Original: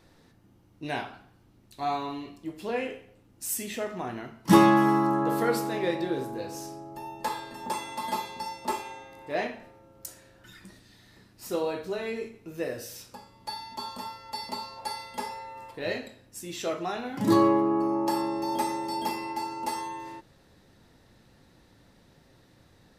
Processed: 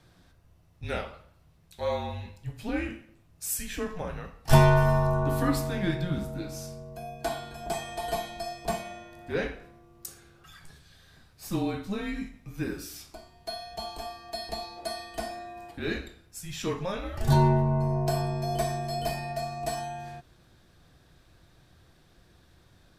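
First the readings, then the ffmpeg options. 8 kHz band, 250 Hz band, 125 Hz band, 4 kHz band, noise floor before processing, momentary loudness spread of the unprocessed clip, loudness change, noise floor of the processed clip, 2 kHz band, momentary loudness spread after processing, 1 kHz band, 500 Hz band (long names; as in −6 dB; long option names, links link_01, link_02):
0.0 dB, −4.5 dB, +11.0 dB, 0.0 dB, −60 dBFS, 19 LU, −1.0 dB, −60 dBFS, 0.0 dB, 19 LU, −3.5 dB, −0.5 dB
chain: -af "afreqshift=-190"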